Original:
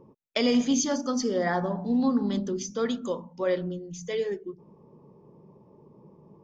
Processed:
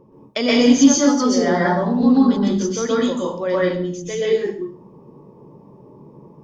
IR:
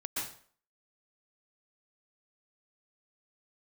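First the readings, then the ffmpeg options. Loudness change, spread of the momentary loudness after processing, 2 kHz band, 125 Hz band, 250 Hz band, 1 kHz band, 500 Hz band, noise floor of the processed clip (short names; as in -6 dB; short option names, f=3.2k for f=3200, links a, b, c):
+10.5 dB, 13 LU, +10.0 dB, +9.5 dB, +11.0 dB, +9.5 dB, +9.5 dB, -46 dBFS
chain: -filter_complex "[1:a]atrim=start_sample=2205,asetrate=43218,aresample=44100[a];[0:a][a]afir=irnorm=-1:irlink=0,volume=7dB"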